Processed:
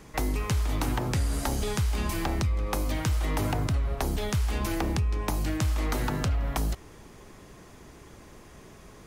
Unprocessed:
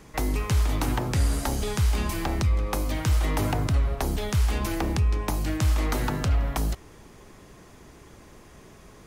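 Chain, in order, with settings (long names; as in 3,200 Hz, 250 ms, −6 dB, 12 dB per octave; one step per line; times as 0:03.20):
downward compressor, threshold −23 dBFS, peak gain reduction 5 dB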